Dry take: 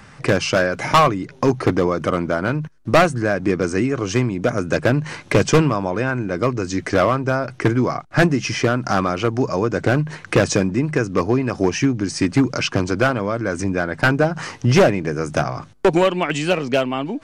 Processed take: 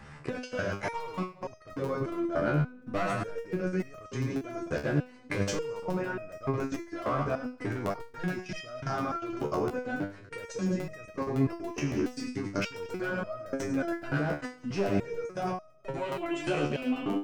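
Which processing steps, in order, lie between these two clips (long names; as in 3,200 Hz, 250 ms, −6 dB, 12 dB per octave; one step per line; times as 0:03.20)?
in parallel at −0.5 dB: downward compressor 6 to 1, threshold −24 dBFS, peak gain reduction 13 dB
on the sum: high-shelf EQ 3,400 Hz −7 dB
echo with a time of its own for lows and highs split 440 Hz, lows 336 ms, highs 103 ms, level −9 dB
output level in coarse steps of 21 dB
regular buffer underruns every 0.14 s, samples 64, repeat, from 0:00.72
step-sequenced resonator 3.4 Hz 73–630 Hz
level +1.5 dB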